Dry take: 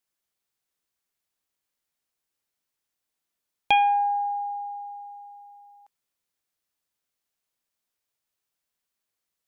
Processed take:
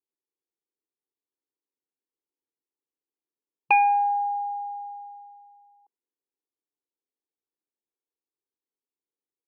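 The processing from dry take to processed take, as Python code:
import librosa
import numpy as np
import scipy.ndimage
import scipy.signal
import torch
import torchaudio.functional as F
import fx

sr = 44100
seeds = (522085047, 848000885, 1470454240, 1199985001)

y = fx.brickwall_bandpass(x, sr, low_hz=150.0, high_hz=2800.0)
y = fx.fixed_phaser(y, sr, hz=950.0, stages=8)
y = fx.env_lowpass(y, sr, base_hz=450.0, full_db=-27.5)
y = y * librosa.db_to_amplitude(2.5)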